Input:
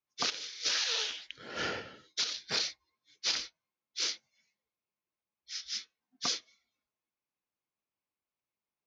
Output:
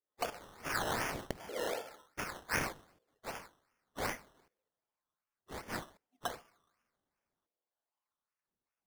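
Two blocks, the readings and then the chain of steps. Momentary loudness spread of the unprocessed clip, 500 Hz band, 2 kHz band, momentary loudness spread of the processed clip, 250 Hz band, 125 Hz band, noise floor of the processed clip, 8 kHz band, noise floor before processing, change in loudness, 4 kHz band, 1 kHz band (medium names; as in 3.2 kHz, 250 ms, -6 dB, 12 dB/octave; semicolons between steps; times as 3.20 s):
12 LU, +5.0 dB, -0.5 dB, 14 LU, +4.5 dB, +8.0 dB, under -85 dBFS, -9.0 dB, under -85 dBFS, -6.0 dB, -15.0 dB, +4.0 dB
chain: two-slope reverb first 0.51 s, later 2.3 s, from -25 dB, DRR 13.5 dB; LFO band-pass saw up 0.67 Hz 460–3500 Hz; decimation with a swept rate 15×, swing 60% 2.6 Hz; trim +7 dB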